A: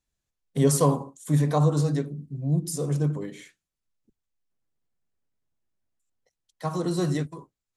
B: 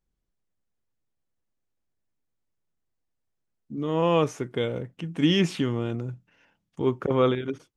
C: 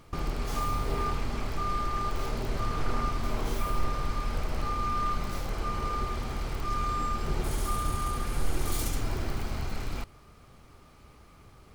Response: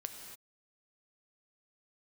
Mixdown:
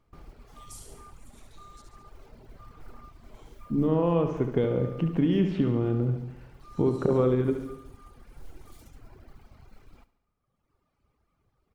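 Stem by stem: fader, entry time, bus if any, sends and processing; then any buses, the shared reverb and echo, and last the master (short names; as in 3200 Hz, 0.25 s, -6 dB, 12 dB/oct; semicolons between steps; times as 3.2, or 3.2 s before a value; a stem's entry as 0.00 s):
-12.0 dB, 0.00 s, muted 1.82–3.09, no send, echo send -5 dB, steep high-pass 2500 Hz
+1.0 dB, 0.00 s, send -3.5 dB, echo send -5.5 dB, tilt shelf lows +4.5 dB; compressor 10:1, threshold -25 dBFS, peak gain reduction 13 dB; Bessel low-pass 3900 Hz
-15.5 dB, 0.00 s, no send, echo send -17 dB, reverb removal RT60 1.6 s; modulation noise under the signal 22 dB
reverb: on, pre-delay 3 ms
echo: feedback echo 71 ms, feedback 57%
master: high shelf 2700 Hz -8 dB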